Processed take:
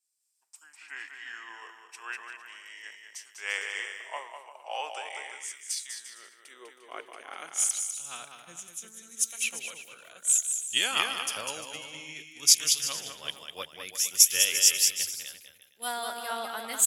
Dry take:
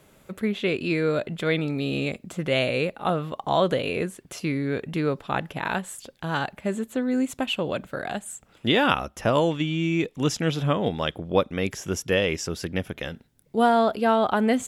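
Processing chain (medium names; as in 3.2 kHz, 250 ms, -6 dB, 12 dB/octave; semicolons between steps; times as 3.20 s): gliding tape speed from 70% -> 104%; treble shelf 4.1 kHz +11.5 dB; high-pass sweep 750 Hz -> 66 Hz, 5.85–9.50 s; differentiator; on a send: bouncing-ball echo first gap 200 ms, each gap 0.75×, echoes 5; on the sum: three bands expanded up and down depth 100%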